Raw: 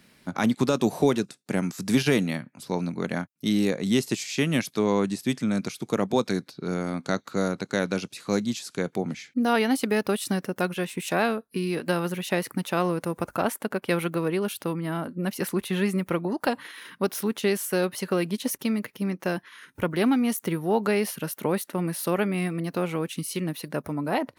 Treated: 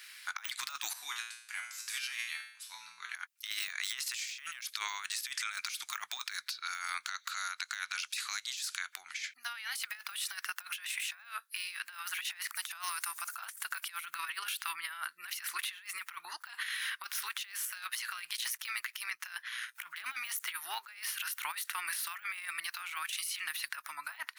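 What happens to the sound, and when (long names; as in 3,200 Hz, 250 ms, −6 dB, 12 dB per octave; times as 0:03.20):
0:00.93–0:03.15: tuned comb filter 58 Hz, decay 0.64 s, harmonics odd, mix 90%
0:07.05–0:09.95: downward compressor 2 to 1, threshold −36 dBFS
0:12.55–0:14.06: bass and treble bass −8 dB, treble +13 dB
0:17.65–0:19.83: amplitude modulation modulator 120 Hz, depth 30%
whole clip: de-essing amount 95%; inverse Chebyshev high-pass filter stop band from 540 Hz, stop band 50 dB; compressor whose output falls as the input rises −45 dBFS, ratio −0.5; level +6.5 dB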